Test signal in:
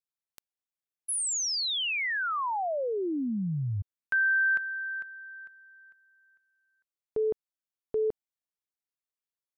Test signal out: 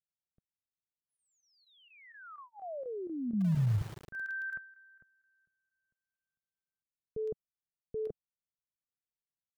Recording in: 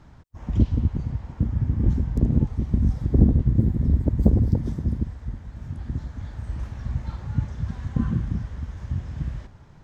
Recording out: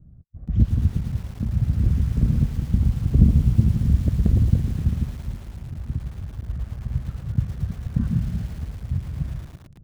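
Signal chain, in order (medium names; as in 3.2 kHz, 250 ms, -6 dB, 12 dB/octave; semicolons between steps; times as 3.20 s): resonant low shelf 230 Hz +7 dB, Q 1.5; level-controlled noise filter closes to 360 Hz, open at -12 dBFS; square tremolo 4.2 Hz, depth 65%, duty 90%; Butterworth band-stop 920 Hz, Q 3; bit-crushed delay 111 ms, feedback 80%, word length 5-bit, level -13.5 dB; trim -6 dB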